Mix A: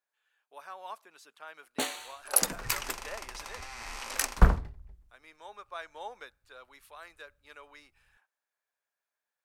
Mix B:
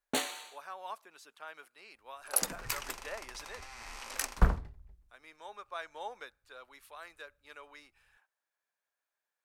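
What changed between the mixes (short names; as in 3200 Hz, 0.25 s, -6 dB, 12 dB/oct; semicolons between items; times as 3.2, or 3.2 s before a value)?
first sound: entry -1.65 s; second sound -5.0 dB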